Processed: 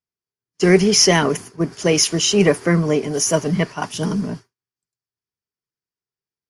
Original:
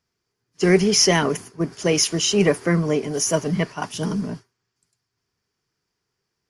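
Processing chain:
noise gate with hold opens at −37 dBFS
level +3 dB

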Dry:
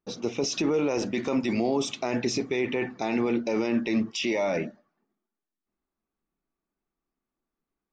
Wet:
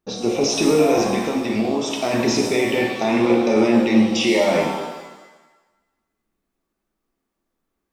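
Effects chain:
0:01.04–0:01.91: downward compressor, threshold −27 dBFS, peak gain reduction 6.5 dB
reverb with rising layers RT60 1.1 s, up +7 semitones, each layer −8 dB, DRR 0 dB
level +5.5 dB

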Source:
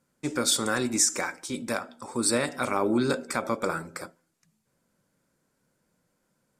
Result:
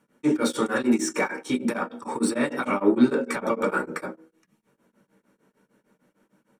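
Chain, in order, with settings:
brickwall limiter −21 dBFS, peak gain reduction 10 dB
hum removal 53.72 Hz, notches 9
soft clipping −22 dBFS, distortion −21 dB
convolution reverb RT60 0.25 s, pre-delay 3 ms, DRR 0 dB
tremolo along a rectified sine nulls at 6.6 Hz
level +1.5 dB

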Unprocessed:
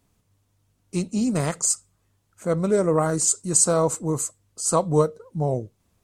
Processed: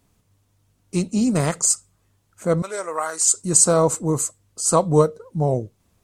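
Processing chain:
0:02.62–0:03.34: high-pass filter 970 Hz 12 dB per octave
level +3.5 dB

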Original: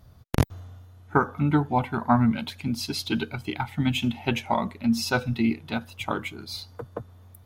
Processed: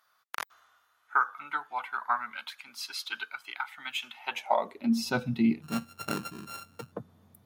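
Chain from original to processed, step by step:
0:05.62–0:06.92: samples sorted by size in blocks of 32 samples
high-pass filter sweep 1,300 Hz → 170 Hz, 0:04.17–0:05.15
level −6 dB

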